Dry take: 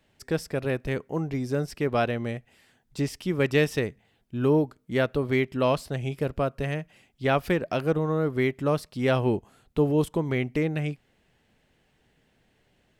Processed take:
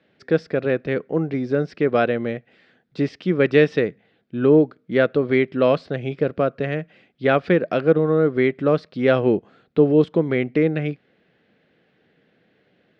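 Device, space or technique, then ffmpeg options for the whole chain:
kitchen radio: -af "highpass=160,equalizer=f=180:t=q:w=4:g=4,equalizer=f=320:t=q:w=4:g=3,equalizer=f=490:t=q:w=4:g=5,equalizer=f=930:t=q:w=4:g=-8,equalizer=f=1500:t=q:w=4:g=3,equalizer=f=2900:t=q:w=4:g=-4,lowpass=f=4000:w=0.5412,lowpass=f=4000:w=1.3066,volume=1.78"

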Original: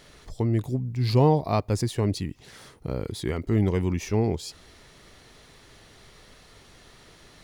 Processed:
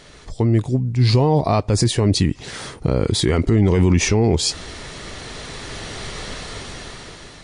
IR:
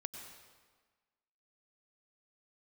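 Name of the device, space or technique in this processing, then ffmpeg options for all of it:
low-bitrate web radio: -af "dynaudnorm=f=370:g=7:m=5.62,alimiter=limit=0.2:level=0:latency=1:release=54,volume=2.37" -ar 22050 -c:a libmp3lame -b:a 48k

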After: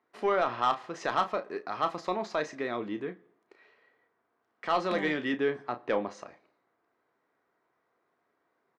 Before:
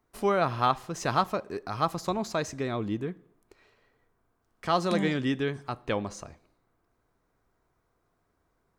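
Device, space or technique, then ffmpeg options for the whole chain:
intercom: -filter_complex "[0:a]highpass=310,lowpass=3600,equalizer=f=1900:t=o:w=0.29:g=5,asoftclip=type=tanh:threshold=0.141,asplit=2[s0][s1];[s1]adelay=33,volume=0.316[s2];[s0][s2]amix=inputs=2:normalize=0,asettb=1/sr,asplit=3[s3][s4][s5];[s3]atrim=end=5.334[s6];[s4]atrim=start=5.33:end=6.09,asetpts=PTS-STARTPTS,afade=t=in:d=0.004:c=qsin,afade=t=out:st=0.756:d=0.004:c=qsin,tiltshelf=f=1400:g=3.5[s7];[s5]atrim=start=6.086[s8];[s6][s7]acrossfade=d=0.004:c1=hsin:c2=qsin[s9];[s9][s8]acrossfade=d=0.004:c1=qsin:c2=hsin"

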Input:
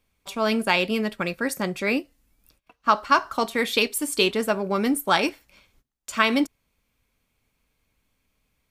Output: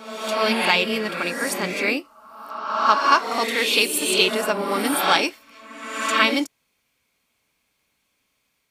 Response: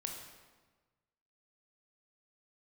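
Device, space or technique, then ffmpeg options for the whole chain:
ghost voice: -filter_complex "[0:a]equalizer=f=5300:w=0.48:g=4,areverse[s0];[1:a]atrim=start_sample=2205[s1];[s0][s1]afir=irnorm=-1:irlink=0,areverse,highpass=f=340:p=1,volume=1.5"

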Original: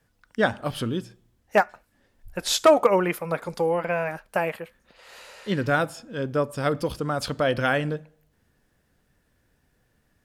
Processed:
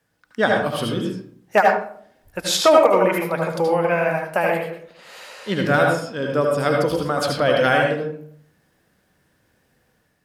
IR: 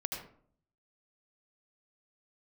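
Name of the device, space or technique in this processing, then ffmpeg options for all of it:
far laptop microphone: -filter_complex "[1:a]atrim=start_sample=2205[s0];[0:a][s0]afir=irnorm=-1:irlink=0,highpass=f=190:p=1,dynaudnorm=f=130:g=5:m=1.58,volume=1.12"

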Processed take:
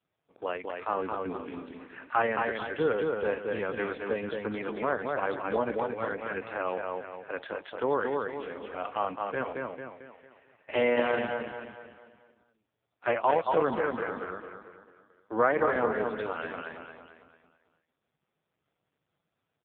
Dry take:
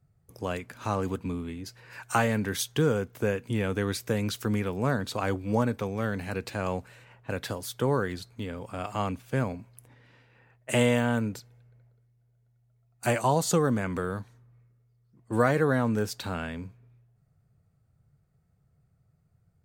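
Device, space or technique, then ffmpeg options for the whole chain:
telephone: -af "highpass=390,lowpass=3300,aecho=1:1:223|446|669|892|1115|1338:0.668|0.301|0.135|0.0609|0.0274|0.0123,volume=1.26" -ar 8000 -c:a libopencore_amrnb -b:a 4750

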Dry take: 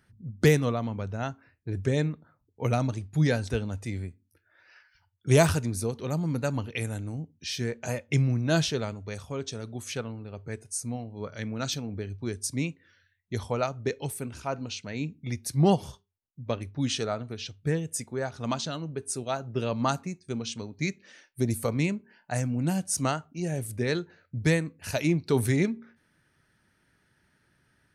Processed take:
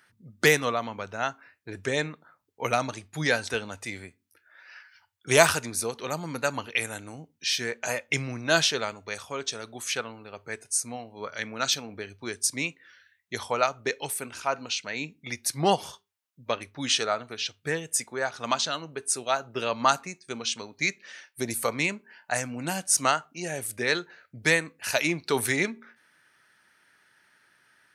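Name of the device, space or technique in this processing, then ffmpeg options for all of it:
filter by subtraction: -filter_complex "[0:a]asplit=2[s0][s1];[s1]lowpass=1400,volume=-1[s2];[s0][s2]amix=inputs=2:normalize=0,volume=2.11"

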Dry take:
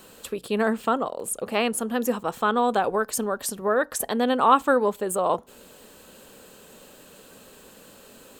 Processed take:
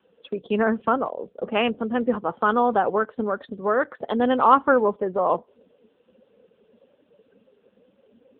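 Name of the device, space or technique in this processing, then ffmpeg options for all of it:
mobile call with aggressive noise cancelling: -af "highpass=110,afftdn=nr=18:nf=-38,volume=1.33" -ar 8000 -c:a libopencore_amrnb -b:a 7950

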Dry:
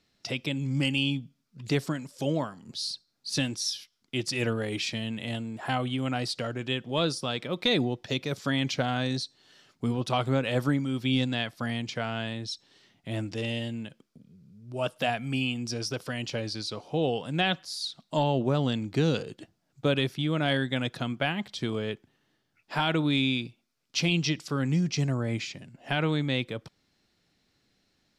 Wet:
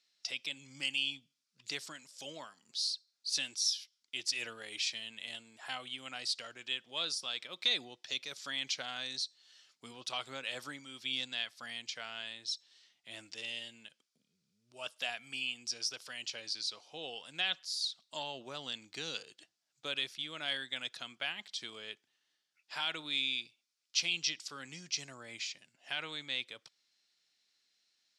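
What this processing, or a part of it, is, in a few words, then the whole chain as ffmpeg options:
piezo pickup straight into a mixer: -af "lowpass=6100,aderivative,volume=1.58"

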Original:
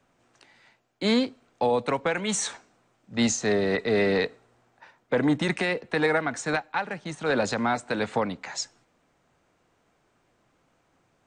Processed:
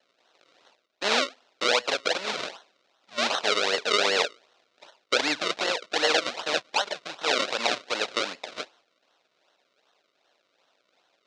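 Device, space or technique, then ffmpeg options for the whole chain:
circuit-bent sampling toy: -af "acrusher=samples=36:mix=1:aa=0.000001:lfo=1:lforange=36:lforate=2.6,highpass=560,equalizer=f=590:t=q:w=4:g=4,equalizer=f=1400:t=q:w=4:g=3,equalizer=f=2500:t=q:w=4:g=4,equalizer=f=3800:t=q:w=4:g=6,lowpass=f=5800:w=0.5412,lowpass=f=5800:w=1.3066,highshelf=f=3300:g=10"

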